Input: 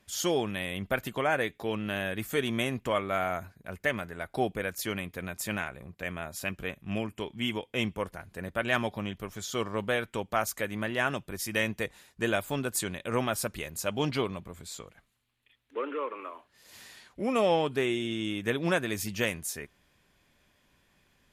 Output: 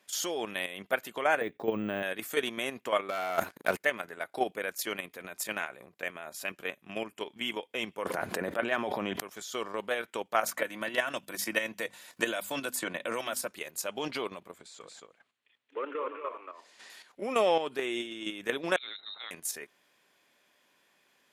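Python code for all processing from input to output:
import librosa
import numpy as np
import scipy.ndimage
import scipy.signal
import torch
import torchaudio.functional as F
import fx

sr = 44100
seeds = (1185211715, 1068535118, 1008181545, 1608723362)

y = fx.chain(x, sr, fx.tilt_eq(slope=-4.0),
    fx.resample_bad(factor=2, down='none', up='hold'), at=(1.41, 2.03))
y = fx.chain(y, sr, fx.leveller(passes=3),
    fx.over_compress(threshold_db=-27.0, ratio=-0.5), at=(3.09, 3.77))
y = fx.chain(y, sr, fx.highpass(hz=63.0, slope=12),
    fx.high_shelf(hz=2300.0, db=-10.0),
    fx.env_flatten(amount_pct=100), at=(8.05, 9.2))
y = fx.chain(y, sr, fx.hum_notches(base_hz=50, count=5),
    fx.notch_comb(f0_hz=410.0),
    fx.band_squash(depth_pct=100), at=(10.43, 13.48))
y = fx.chain(y, sr, fx.lowpass(hz=9200.0, slope=24),
    fx.high_shelf(hz=3800.0, db=-6.0),
    fx.echo_single(ms=227, db=-4.5), at=(14.58, 16.9))
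y = fx.chain(y, sr, fx.level_steps(step_db=22),
    fx.transient(attack_db=4, sustain_db=-11),
    fx.freq_invert(carrier_hz=3900), at=(18.76, 19.31))
y = scipy.signal.sosfilt(scipy.signal.butter(2, 360.0, 'highpass', fs=sr, output='sos'), y)
y = fx.level_steps(y, sr, step_db=9)
y = F.gain(torch.from_numpy(y), 3.0).numpy()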